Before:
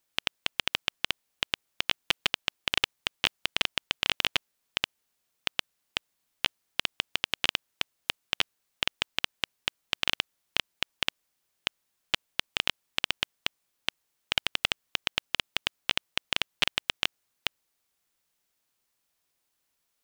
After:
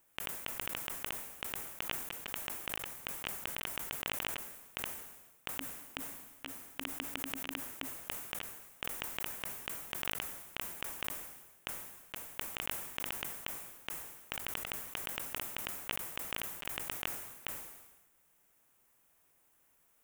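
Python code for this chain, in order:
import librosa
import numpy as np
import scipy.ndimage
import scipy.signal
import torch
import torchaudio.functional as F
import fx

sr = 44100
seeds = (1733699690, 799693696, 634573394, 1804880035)

y = fx.peak_eq(x, sr, hz=4400.0, db=-14.5, octaves=1.1)
y = fx.over_compress(y, sr, threshold_db=-41.0, ratio=-1.0)
y = fx.peak_eq(y, sr, hz=270.0, db=9.5, octaves=0.23, at=(5.59, 7.96))
y = fx.sustainer(y, sr, db_per_s=50.0)
y = y * 10.0 ** (1.0 / 20.0)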